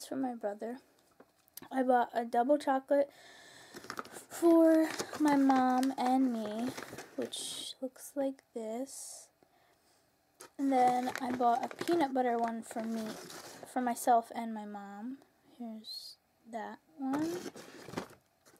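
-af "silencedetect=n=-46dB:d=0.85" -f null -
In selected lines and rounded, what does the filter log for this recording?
silence_start: 9.23
silence_end: 10.41 | silence_duration: 1.17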